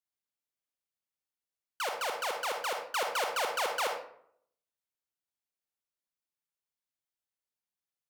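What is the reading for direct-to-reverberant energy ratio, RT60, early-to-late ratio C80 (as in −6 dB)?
3.5 dB, 0.65 s, 8.5 dB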